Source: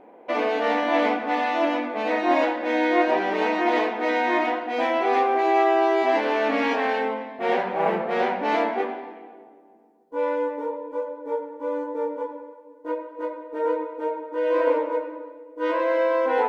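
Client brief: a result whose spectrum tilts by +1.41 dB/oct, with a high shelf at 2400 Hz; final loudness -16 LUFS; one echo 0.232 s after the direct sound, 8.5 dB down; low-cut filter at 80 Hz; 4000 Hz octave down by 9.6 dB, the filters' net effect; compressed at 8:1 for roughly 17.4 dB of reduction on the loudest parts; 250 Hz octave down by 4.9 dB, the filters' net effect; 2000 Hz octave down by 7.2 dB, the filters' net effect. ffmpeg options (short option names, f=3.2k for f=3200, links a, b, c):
-af "highpass=80,equalizer=f=250:t=o:g=-6.5,equalizer=f=2k:t=o:g=-4.5,highshelf=f=2.4k:g=-7,equalizer=f=4k:t=o:g=-5,acompressor=threshold=-37dB:ratio=8,aecho=1:1:232:0.376,volume=24dB"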